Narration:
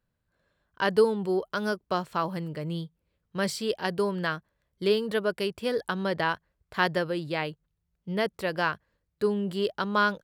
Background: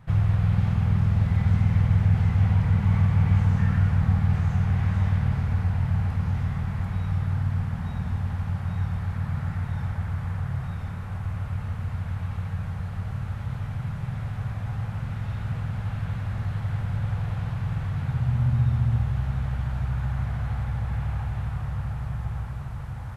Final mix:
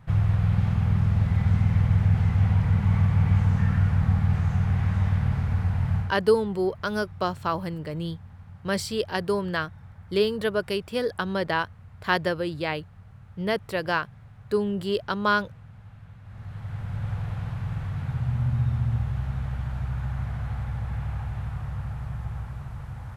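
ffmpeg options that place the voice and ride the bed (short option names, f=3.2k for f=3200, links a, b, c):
-filter_complex "[0:a]adelay=5300,volume=1.5dB[a];[1:a]volume=14dB,afade=t=out:st=5.96:d=0.2:silence=0.149624,afade=t=in:st=16.22:d=0.88:silence=0.188365[b];[a][b]amix=inputs=2:normalize=0"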